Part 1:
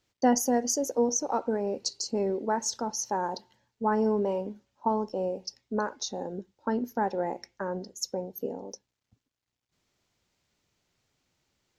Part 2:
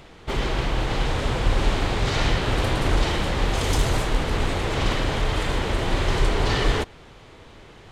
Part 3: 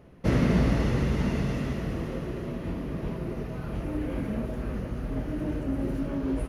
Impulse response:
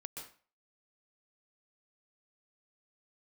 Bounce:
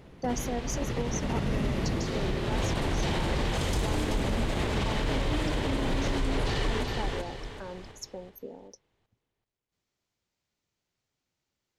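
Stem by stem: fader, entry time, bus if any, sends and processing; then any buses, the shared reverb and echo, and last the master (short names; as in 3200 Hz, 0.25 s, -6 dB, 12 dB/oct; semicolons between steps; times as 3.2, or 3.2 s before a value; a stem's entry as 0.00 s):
-8.5 dB, 0.00 s, no send, no echo send, dry
2.35 s -13 dB -> 2.67 s -4 dB, 0.00 s, no send, echo send -7 dB, bell 1300 Hz -3.5 dB 0.36 oct
-0.5 dB, 0.00 s, no send, no echo send, negative-ratio compressor -28 dBFS, ratio -0.5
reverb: off
echo: feedback echo 0.382 s, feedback 35%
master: limiter -19.5 dBFS, peak gain reduction 8 dB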